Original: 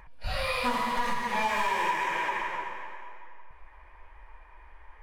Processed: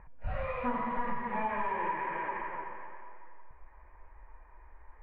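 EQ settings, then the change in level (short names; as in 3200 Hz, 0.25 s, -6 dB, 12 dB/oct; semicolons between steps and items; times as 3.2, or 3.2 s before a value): inverse Chebyshev low-pass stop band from 7000 Hz, stop band 60 dB; tilt -2.5 dB/oct; low shelf 71 Hz -11.5 dB; -5.0 dB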